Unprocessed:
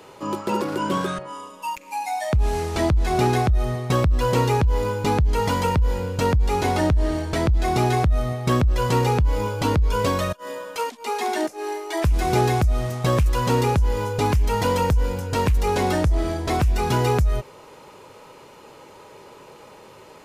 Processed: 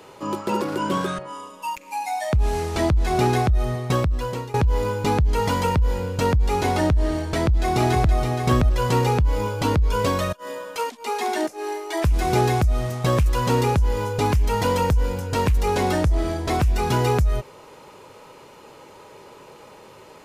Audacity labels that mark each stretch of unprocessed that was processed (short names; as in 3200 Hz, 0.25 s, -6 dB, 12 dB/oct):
3.880000	4.540000	fade out, to -19.5 dB
7.300000	8.220000	echo throw 0.47 s, feedback 10%, level -7 dB